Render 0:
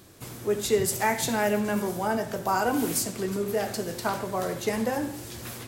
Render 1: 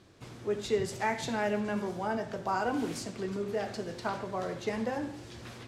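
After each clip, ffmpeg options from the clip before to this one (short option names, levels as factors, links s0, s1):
-af "lowpass=4900,volume=0.531"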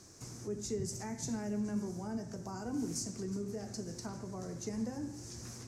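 -filter_complex "[0:a]equalizer=f=560:w=3.8:g=-2.5,acrossover=split=310[s0][s1];[s1]acompressor=threshold=0.00112:ratio=2[s2];[s0][s2]amix=inputs=2:normalize=0,highshelf=f=4500:t=q:w=3:g=10.5"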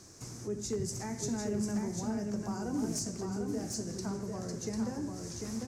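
-af "aeval=exprs='0.0355*(abs(mod(val(0)/0.0355+3,4)-2)-1)':c=same,aecho=1:1:747:0.596,volume=1.33"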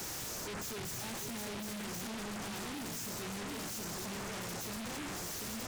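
-af "asoftclip=type=tanh:threshold=0.0119,alimiter=level_in=20:limit=0.0631:level=0:latency=1,volume=0.0501,aeval=exprs='0.00316*sin(PI/2*3.55*val(0)/0.00316)':c=same,volume=3.76"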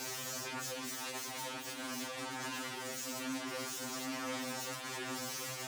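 -filter_complex "[0:a]asplit=2[s0][s1];[s1]highpass=f=720:p=1,volume=1.58,asoftclip=type=tanh:threshold=0.0126[s2];[s0][s2]amix=inputs=2:normalize=0,lowpass=f=6400:p=1,volume=0.501,afreqshift=71,afftfilt=real='re*2.45*eq(mod(b,6),0)':imag='im*2.45*eq(mod(b,6),0)':win_size=2048:overlap=0.75,volume=1.78"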